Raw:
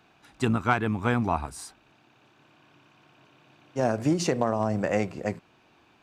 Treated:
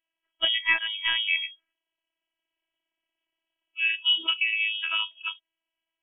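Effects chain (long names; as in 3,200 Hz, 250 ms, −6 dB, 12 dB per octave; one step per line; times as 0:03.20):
noise reduction from a noise print of the clip's start 28 dB
voice inversion scrambler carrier 3,300 Hz
phases set to zero 327 Hz
level +3 dB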